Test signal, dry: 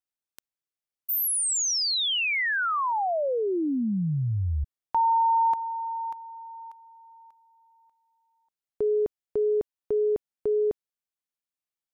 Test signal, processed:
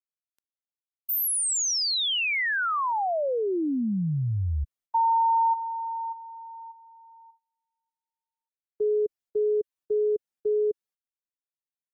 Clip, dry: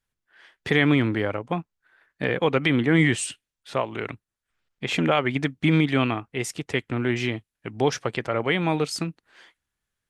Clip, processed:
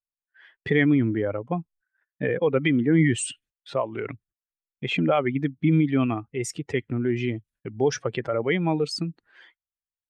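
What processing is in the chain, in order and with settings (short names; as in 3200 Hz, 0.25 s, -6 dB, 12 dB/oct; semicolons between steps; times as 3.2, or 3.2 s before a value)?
spectral contrast raised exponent 1.7; gate -57 dBFS, range -24 dB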